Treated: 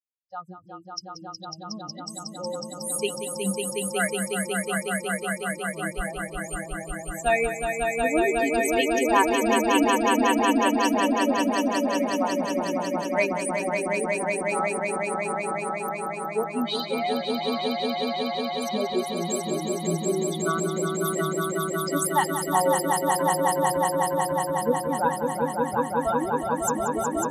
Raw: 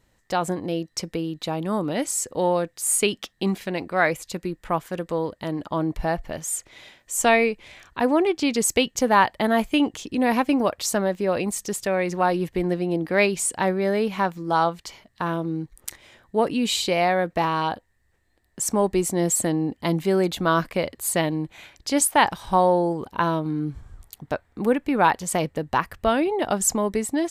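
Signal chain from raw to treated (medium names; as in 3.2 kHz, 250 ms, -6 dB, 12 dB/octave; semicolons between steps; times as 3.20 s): expander on every frequency bin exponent 3; peaking EQ 7.8 kHz -4.5 dB 0.61 oct; on a send: echo with a slow build-up 183 ms, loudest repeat 5, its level -4 dB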